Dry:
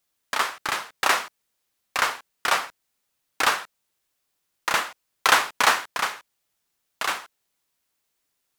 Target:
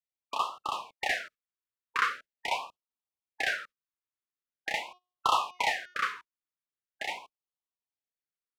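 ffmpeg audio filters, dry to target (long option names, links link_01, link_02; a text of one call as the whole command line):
ffmpeg -i in.wav -filter_complex "[0:a]asettb=1/sr,asplit=3[link_01][link_02][link_03];[link_01]atrim=end=4.734[link_04];[link_02]atrim=start=4.73:end=6.12,asetpts=PTS-STARTPTS,afade=type=in:duration=0.004:curve=qsin,afade=type=out:start_time=1.386:duration=0.004:curve=qsin,bandreject=frequency=361.5:width_type=h:width=4,bandreject=frequency=723:width_type=h:width=4,bandreject=frequency=1084.5:width_type=h:width=4,bandreject=frequency=1446:width_type=h:width=4,bandreject=frequency=1807.5:width_type=h:width=4,bandreject=frequency=2169:width_type=h:width=4,bandreject=frequency=2530.5:width_type=h:width=4,bandreject=frequency=2892:width_type=h:width=4,bandreject=frequency=3253.5:width_type=h:width=4,bandreject=frequency=3615:width_type=h:width=4,bandreject=frequency=3976.5:width_type=h:width=4,bandreject=frequency=4338:width_type=h:width=4,bandreject=frequency=4699.5:width_type=h:width=4,bandreject=frequency=5061:width_type=h:width=4,bandreject=frequency=5422.5:width_type=h:width=4,bandreject=frequency=5784:width_type=h:width=4,bandreject=frequency=6145.5:width_type=h:width=4,bandreject=frequency=6507:width_type=h:width=4[link_05];[link_03]atrim=start=6.116[link_06];[link_04][link_05]acrossfade=duration=0.004:curve1=hsin:curve2=qsin[link_07];[link_07][link_06]acrossfade=duration=0.004:curve1=qsin:curve2=hsin,agate=range=-17dB:threshold=-41dB:ratio=16:detection=peak,highshelf=frequency=2200:gain=-8.5,acrossover=split=690[link_08][link_09];[link_08]acompressor=threshold=-42dB:ratio=6[link_10];[link_09]asplit=2[link_11][link_12];[link_12]highpass=frequency=720:poles=1,volume=12dB,asoftclip=type=tanh:threshold=-1.5dB[link_13];[link_11][link_13]amix=inputs=2:normalize=0,lowpass=frequency=2100:poles=1,volume=-6dB[link_14];[link_10][link_14]amix=inputs=2:normalize=0,afftfilt=real='re*(1-between(b*sr/1024,610*pow(1900/610,0.5+0.5*sin(2*PI*0.43*pts/sr))/1.41,610*pow(1900/610,0.5+0.5*sin(2*PI*0.43*pts/sr))*1.41))':imag='im*(1-between(b*sr/1024,610*pow(1900/610,0.5+0.5*sin(2*PI*0.43*pts/sr))/1.41,610*pow(1900/610,0.5+0.5*sin(2*PI*0.43*pts/sr))*1.41))':win_size=1024:overlap=0.75,volume=-4.5dB" out.wav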